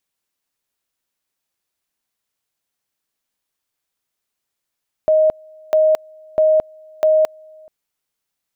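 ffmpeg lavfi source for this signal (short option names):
-f lavfi -i "aevalsrc='pow(10,(-10-29.5*gte(mod(t,0.65),0.22))/20)*sin(2*PI*625*t)':d=2.6:s=44100"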